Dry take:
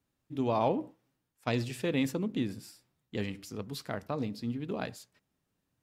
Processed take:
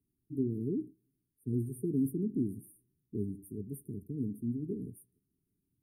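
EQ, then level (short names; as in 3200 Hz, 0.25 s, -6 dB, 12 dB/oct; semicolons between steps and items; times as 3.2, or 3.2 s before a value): brick-wall FIR band-stop 440–8600 Hz; 0.0 dB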